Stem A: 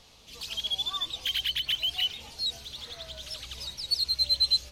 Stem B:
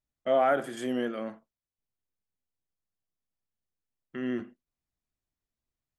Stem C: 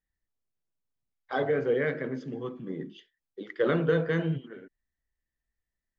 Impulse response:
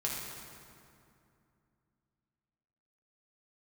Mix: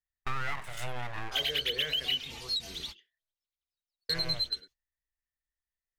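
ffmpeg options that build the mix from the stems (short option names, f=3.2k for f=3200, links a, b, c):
-filter_complex "[0:a]aecho=1:1:4.4:0.34,adelay=100,volume=0.5dB[a];[1:a]aeval=exprs='abs(val(0))':c=same,volume=3dB[b];[2:a]volume=-10dB,asplit=3[c][d][e];[c]atrim=end=3.34,asetpts=PTS-STARTPTS,afade=t=out:st=3.336:d=0.004:c=hsin[f];[d]atrim=start=3.34:end=4.09,asetpts=PTS-STARTPTS,volume=0[g];[e]atrim=start=4.09,asetpts=PTS-STARTPTS,afade=t=in:d=0.004:c=hsin[h];[f][g][h]concat=n=3:v=0:a=1,asplit=2[i][j];[j]apad=whole_len=212422[k];[a][k]sidechaingate=range=-39dB:threshold=-51dB:ratio=16:detection=peak[l];[l][b]amix=inputs=2:normalize=0,agate=range=-22dB:threshold=-47dB:ratio=16:detection=peak,acompressor=threshold=-29dB:ratio=6,volume=0dB[m];[i][m]amix=inputs=2:normalize=0,equalizer=f=250:t=o:w=1:g=-9,equalizer=f=500:t=o:w=1:g=-3,equalizer=f=2k:t=o:w=1:g=4"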